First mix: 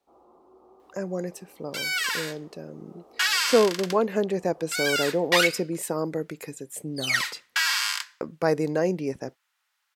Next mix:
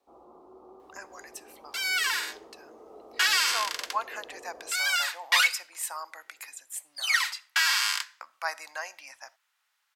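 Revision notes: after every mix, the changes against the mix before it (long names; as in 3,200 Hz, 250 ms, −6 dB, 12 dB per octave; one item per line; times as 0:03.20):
speech: add inverse Chebyshev high-pass filter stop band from 450 Hz, stop band 40 dB
reverb: on, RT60 0.55 s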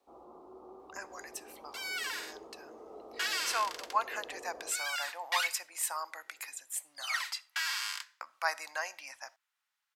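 second sound −10.0 dB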